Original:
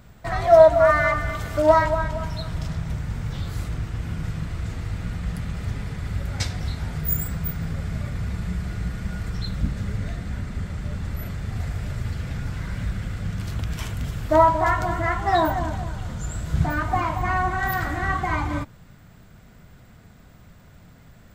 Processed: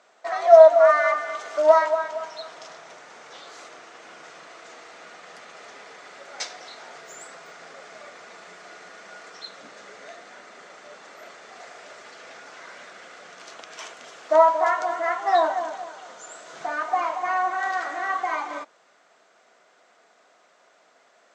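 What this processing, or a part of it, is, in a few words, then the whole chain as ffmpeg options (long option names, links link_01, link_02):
phone speaker on a table: -af "highpass=frequency=410:width=0.5412,highpass=frequency=410:width=1.3066,equalizer=frequency=680:width_type=q:width=4:gain=5,equalizer=frequency=1200:width_type=q:width=4:gain=3,equalizer=frequency=6200:width_type=q:width=4:gain=5,lowpass=frequency=7400:width=0.5412,lowpass=frequency=7400:width=1.3066,volume=-2.5dB"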